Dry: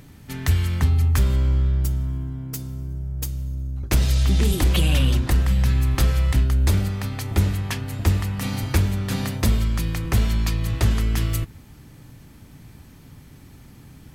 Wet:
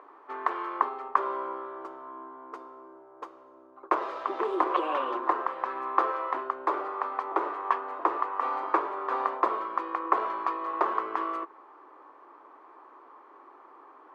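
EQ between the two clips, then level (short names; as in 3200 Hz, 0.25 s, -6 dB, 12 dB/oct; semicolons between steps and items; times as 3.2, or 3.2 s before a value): elliptic high-pass 350 Hz, stop band 50 dB; synth low-pass 1100 Hz, resonance Q 7; 0.0 dB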